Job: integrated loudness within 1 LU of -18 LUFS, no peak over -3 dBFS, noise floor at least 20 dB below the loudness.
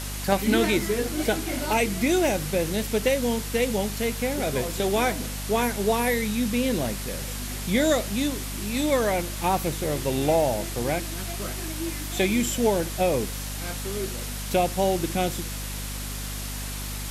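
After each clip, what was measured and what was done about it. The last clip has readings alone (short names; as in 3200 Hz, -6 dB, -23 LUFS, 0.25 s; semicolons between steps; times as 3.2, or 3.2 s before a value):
hum 50 Hz; harmonics up to 250 Hz; hum level -32 dBFS; noise floor -33 dBFS; noise floor target -46 dBFS; loudness -25.5 LUFS; peak -9.0 dBFS; loudness target -18.0 LUFS
-> de-hum 50 Hz, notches 5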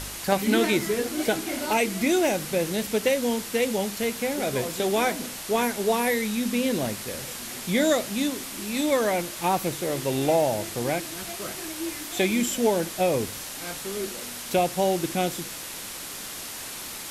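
hum none; noise floor -37 dBFS; noise floor target -46 dBFS
-> denoiser 9 dB, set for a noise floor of -37 dBFS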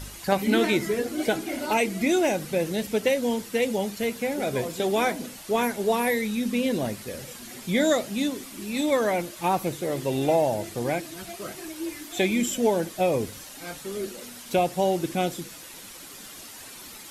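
noise floor -43 dBFS; noise floor target -46 dBFS
-> denoiser 6 dB, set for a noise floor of -43 dBFS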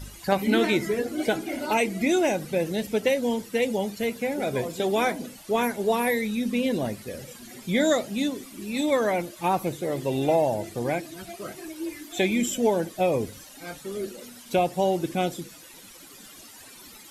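noise floor -47 dBFS; loudness -26.0 LUFS; peak -9.0 dBFS; loudness target -18.0 LUFS
-> gain +8 dB; limiter -3 dBFS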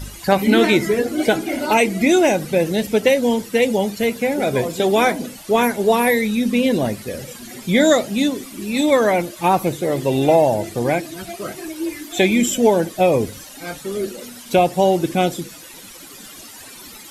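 loudness -18.0 LUFS; peak -3.0 dBFS; noise floor -39 dBFS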